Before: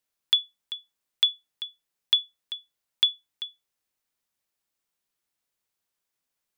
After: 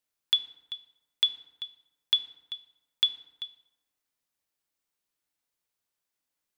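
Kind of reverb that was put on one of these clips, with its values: FDN reverb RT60 1 s, low-frequency decay 1×, high-frequency decay 0.6×, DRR 10 dB; gain -2.5 dB

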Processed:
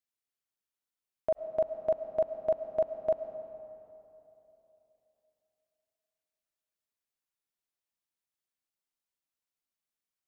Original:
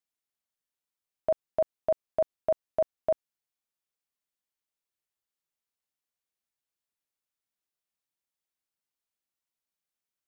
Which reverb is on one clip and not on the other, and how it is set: digital reverb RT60 3.2 s, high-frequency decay 0.6×, pre-delay 65 ms, DRR 8.5 dB; gain -3 dB

